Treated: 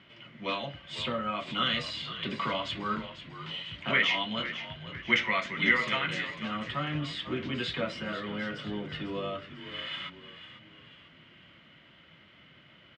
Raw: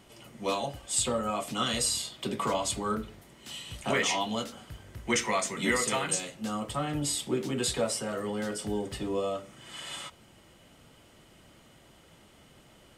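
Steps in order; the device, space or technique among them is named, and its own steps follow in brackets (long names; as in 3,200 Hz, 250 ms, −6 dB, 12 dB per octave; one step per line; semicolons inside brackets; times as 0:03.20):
frequency-shifting delay pedal into a guitar cabinet (echo with shifted repeats 496 ms, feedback 45%, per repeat −59 Hz, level −12 dB; loudspeaker in its box 99–3,700 Hz, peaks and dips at 160 Hz +4 dB, 440 Hz −7 dB, 800 Hz −9 dB, 1,500 Hz +4 dB, 2,100 Hz +7 dB, 3,100 Hz +5 dB)
parametric band 260 Hz −2.5 dB 2.5 octaves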